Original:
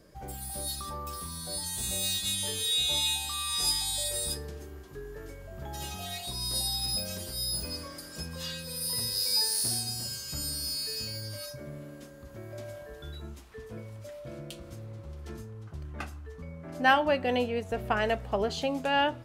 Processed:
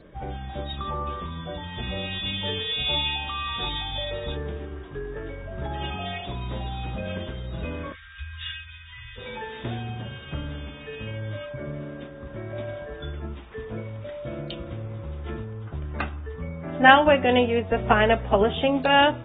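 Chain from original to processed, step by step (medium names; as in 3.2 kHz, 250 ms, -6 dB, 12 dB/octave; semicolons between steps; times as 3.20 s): 7.92–9.18 s: inverse Chebyshev band-stop 200–610 Hz, stop band 60 dB; trim +8 dB; AAC 16 kbps 32 kHz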